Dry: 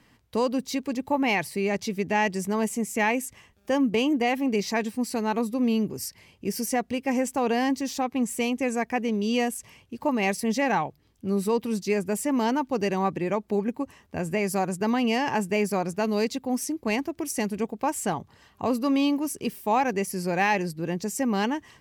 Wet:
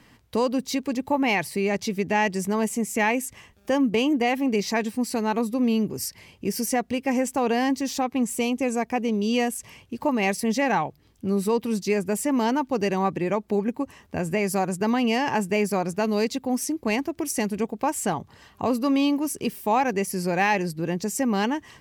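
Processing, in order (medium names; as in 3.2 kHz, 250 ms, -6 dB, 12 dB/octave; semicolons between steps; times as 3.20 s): 8.30–9.33 s: peaking EQ 1.8 kHz -6 dB 0.54 oct; in parallel at -2 dB: compression, threshold -34 dBFS, peak gain reduction 14.5 dB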